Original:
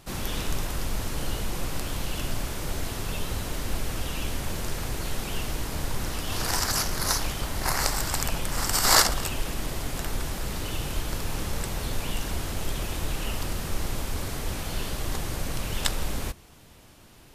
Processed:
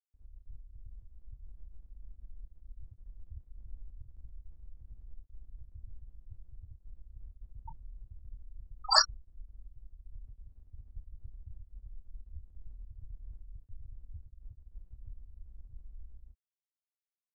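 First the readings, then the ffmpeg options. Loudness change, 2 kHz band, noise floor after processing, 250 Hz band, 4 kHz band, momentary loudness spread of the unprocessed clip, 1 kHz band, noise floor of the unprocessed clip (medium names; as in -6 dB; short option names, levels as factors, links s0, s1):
+3.0 dB, -14.0 dB, under -85 dBFS, under -35 dB, -7.0 dB, 7 LU, -9.5 dB, -52 dBFS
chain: -filter_complex "[0:a]afftfilt=real='re*gte(hypot(re,im),0.316)':imag='im*gte(hypot(re,im),0.316)':win_size=1024:overlap=0.75,aemphasis=mode=production:type=bsi,dynaudnorm=f=380:g=9:m=1.58,asplit=2[s0][s1];[s1]adelay=27,volume=0.266[s2];[s0][s2]amix=inputs=2:normalize=0,volume=0.75"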